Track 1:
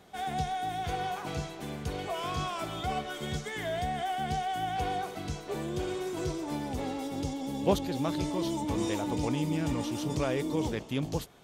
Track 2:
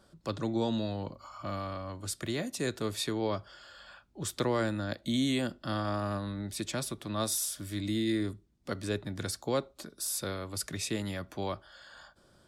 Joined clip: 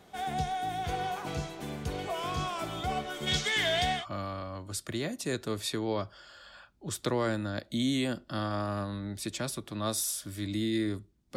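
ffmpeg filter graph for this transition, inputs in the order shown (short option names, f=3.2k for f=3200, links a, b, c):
-filter_complex "[0:a]asplit=3[a][b][c];[a]afade=t=out:st=3.26:d=0.02[d];[b]equalizer=f=3.6k:w=0.51:g=14.5,afade=t=in:st=3.26:d=0.02,afade=t=out:st=4.06:d=0.02[e];[c]afade=t=in:st=4.06:d=0.02[f];[d][e][f]amix=inputs=3:normalize=0,apad=whole_dur=11.36,atrim=end=11.36,atrim=end=4.06,asetpts=PTS-STARTPTS[g];[1:a]atrim=start=1.26:end=8.7,asetpts=PTS-STARTPTS[h];[g][h]acrossfade=d=0.14:c1=tri:c2=tri"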